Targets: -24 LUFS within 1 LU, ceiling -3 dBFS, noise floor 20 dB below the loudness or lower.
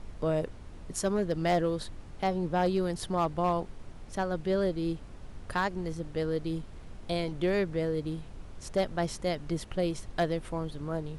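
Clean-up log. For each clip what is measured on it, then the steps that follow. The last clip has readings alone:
clipped 0.4%; flat tops at -20.5 dBFS; noise floor -46 dBFS; noise floor target -52 dBFS; loudness -31.5 LUFS; peak -20.5 dBFS; loudness target -24.0 LUFS
-> clip repair -20.5 dBFS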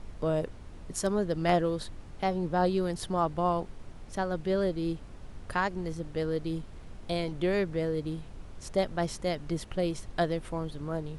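clipped 0.0%; noise floor -46 dBFS; noise floor target -52 dBFS
-> noise print and reduce 6 dB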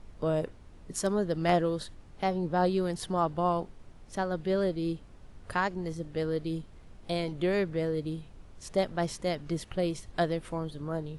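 noise floor -51 dBFS; noise floor target -52 dBFS
-> noise print and reduce 6 dB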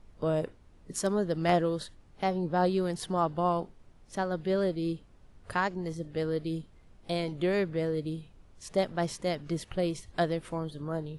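noise floor -57 dBFS; loudness -31.5 LUFS; peak -12.0 dBFS; loudness target -24.0 LUFS
-> gain +7.5 dB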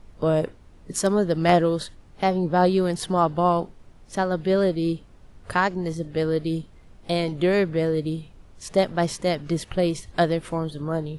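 loudness -24.0 LUFS; peak -4.5 dBFS; noise floor -50 dBFS

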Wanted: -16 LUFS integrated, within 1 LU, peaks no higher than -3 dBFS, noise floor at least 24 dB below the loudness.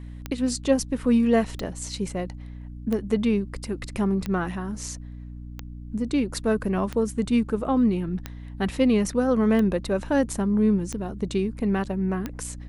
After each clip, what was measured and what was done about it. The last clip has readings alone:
clicks 10; hum 60 Hz; harmonics up to 300 Hz; hum level -36 dBFS; loudness -25.0 LUFS; peak -8.0 dBFS; loudness target -16.0 LUFS
-> de-click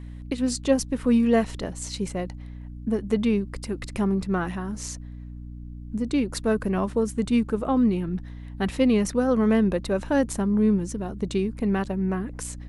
clicks 0; hum 60 Hz; harmonics up to 300 Hz; hum level -36 dBFS
-> de-hum 60 Hz, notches 5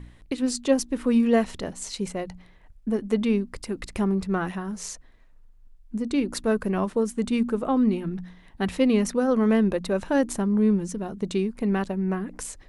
hum none; loudness -25.5 LUFS; peak -8.5 dBFS; loudness target -16.0 LUFS
-> gain +9.5 dB; limiter -3 dBFS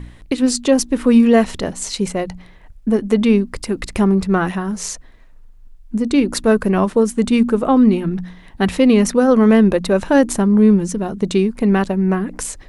loudness -16.0 LUFS; peak -3.0 dBFS; noise floor -43 dBFS

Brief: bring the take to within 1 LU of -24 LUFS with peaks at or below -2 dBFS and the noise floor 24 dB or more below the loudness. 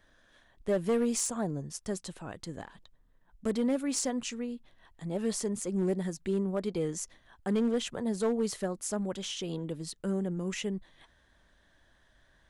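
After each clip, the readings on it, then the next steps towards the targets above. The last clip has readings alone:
clipped 0.8%; flat tops at -22.5 dBFS; loudness -33.0 LUFS; peak -22.5 dBFS; loudness target -24.0 LUFS
-> clip repair -22.5 dBFS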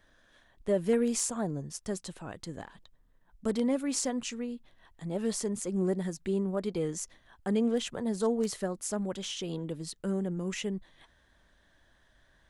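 clipped 0.0%; loudness -32.5 LUFS; peak -16.0 dBFS; loudness target -24.0 LUFS
-> gain +8.5 dB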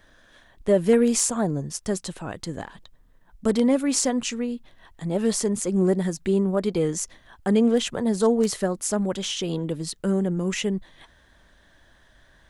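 loudness -24.0 LUFS; peak -7.5 dBFS; noise floor -57 dBFS

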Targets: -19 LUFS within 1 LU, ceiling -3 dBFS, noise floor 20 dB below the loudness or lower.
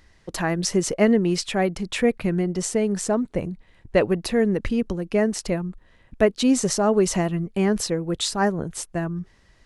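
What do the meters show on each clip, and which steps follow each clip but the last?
loudness -23.0 LUFS; peak -4.5 dBFS; loudness target -19.0 LUFS
-> gain +4 dB; limiter -3 dBFS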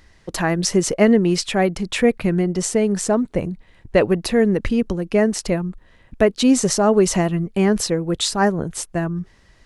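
loudness -19.0 LUFS; peak -3.0 dBFS; noise floor -53 dBFS

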